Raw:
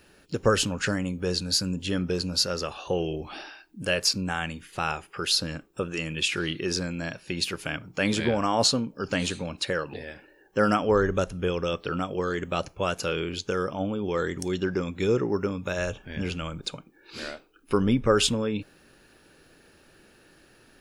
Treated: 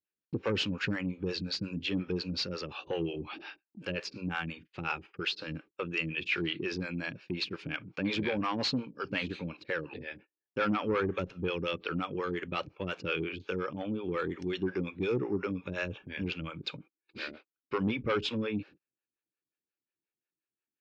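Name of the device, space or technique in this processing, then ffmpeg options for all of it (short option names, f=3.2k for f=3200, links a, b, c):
guitar amplifier with harmonic tremolo: -filter_complex "[0:a]acrossover=split=420[a][b];[a]aeval=exprs='val(0)*(1-1/2+1/2*cos(2*PI*5.6*n/s))':c=same[c];[b]aeval=exprs='val(0)*(1-1/2-1/2*cos(2*PI*5.6*n/s))':c=same[d];[c][d]amix=inputs=2:normalize=0,asoftclip=type=tanh:threshold=-23dB,highpass=96,equalizer=f=320:t=q:w=4:g=4,equalizer=f=670:t=q:w=4:g=-7,equalizer=f=2.4k:t=q:w=4:g=7,lowpass=f=4.4k:w=0.5412,lowpass=f=4.4k:w=1.3066,agate=range=-39dB:threshold=-50dB:ratio=16:detection=peak"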